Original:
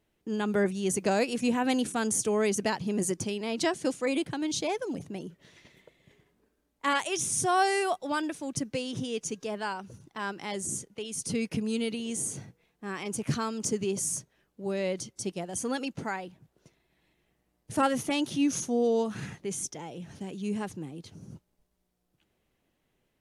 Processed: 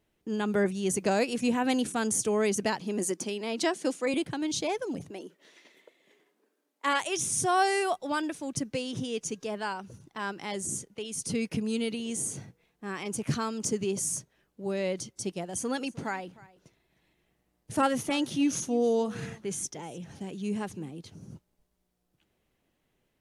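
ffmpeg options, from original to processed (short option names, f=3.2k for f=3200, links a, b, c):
-filter_complex "[0:a]asettb=1/sr,asplit=3[a][b][c];[a]atrim=end=2.804[d];[b]atrim=start=2.8:end=4.14,asetpts=PTS-STARTPTS,afade=t=in:d=0.004:c=qsin,afade=t=out:st=1.336:d=0.004:c=qsin,highpass=f=210:w=0.5412,highpass=f=210:w=1.3066[e];[c]atrim=start=4.136[f];[d][e]acrossfade=d=0.004:c1=hsin:c2=qsin[g];[g][f]acrossfade=d=0.004:c1=qsin:c2=hsin,asettb=1/sr,asplit=3[h][i][j];[h]atrim=end=5.104[k];[i]atrim=start=5.1:end=7.01,asetpts=PTS-STARTPTS,afade=t=in:d=0.004:c=qsin,afade=t=out:st=1.906:d=0.004:c=qsin,highpass=f=270:w=0.5412,highpass=f=270:w=1.3066[l];[j]atrim=start=7.006[m];[k][l]acrossfade=d=0.004:c1=hsin:c2=qsin[n];[n][m]acrossfade=d=0.004:c1=qsin:c2=hsin,asettb=1/sr,asplit=3[o][p][q];[o]atrim=end=15.434[r];[p]atrim=start=15.43:end=20.9,asetpts=PTS-STARTPTS,afade=t=in:d=0.004:c=qsin,afade=t=out:st=5.466:d=0.004:c=qsin,aecho=1:1:306:0.0891,atrim=end_sample=241227[s];[q]atrim=start=20.896[t];[r][s]acrossfade=d=0.004:c1=hsin:c2=qsin[u];[u][t]acrossfade=d=0.004:c1=qsin:c2=hsin"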